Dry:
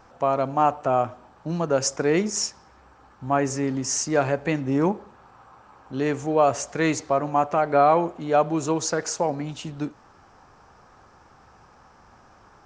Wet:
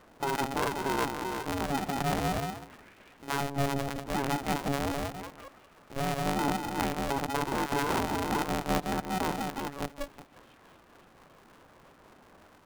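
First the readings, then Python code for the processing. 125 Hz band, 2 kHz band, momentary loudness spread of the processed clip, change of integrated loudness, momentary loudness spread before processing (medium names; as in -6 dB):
-4.5 dB, -2.5 dB, 10 LU, -7.5 dB, 11 LU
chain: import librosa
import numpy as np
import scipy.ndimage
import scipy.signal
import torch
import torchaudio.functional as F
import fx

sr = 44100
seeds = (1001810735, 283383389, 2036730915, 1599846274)

y = fx.peak_eq(x, sr, hz=69.0, db=9.0, octaves=1.8)
y = fx.echo_wet_highpass(y, sr, ms=286, feedback_pct=81, hz=2000.0, wet_db=-14.0)
y = fx.level_steps(y, sr, step_db=13)
y = fx.echo_stepped(y, sr, ms=184, hz=380.0, octaves=0.7, feedback_pct=70, wet_db=0)
y = fx.lpc_vocoder(y, sr, seeds[0], excitation='pitch_kept', order=8)
y = fx.peak_eq(y, sr, hz=460.0, db=6.5, octaves=2.0)
y = y * np.sign(np.sin(2.0 * np.pi * 280.0 * np.arange(len(y)) / sr))
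y = y * 10.0 ** (-8.0 / 20.0)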